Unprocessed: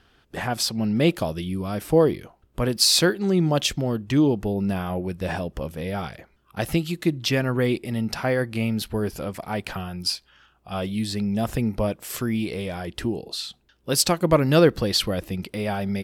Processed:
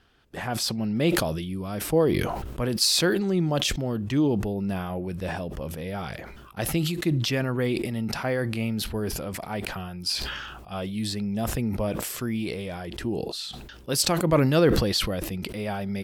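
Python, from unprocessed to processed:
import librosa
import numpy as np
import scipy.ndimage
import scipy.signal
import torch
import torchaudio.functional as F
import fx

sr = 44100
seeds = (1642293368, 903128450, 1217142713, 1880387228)

y = fx.sustainer(x, sr, db_per_s=35.0)
y = y * librosa.db_to_amplitude(-4.0)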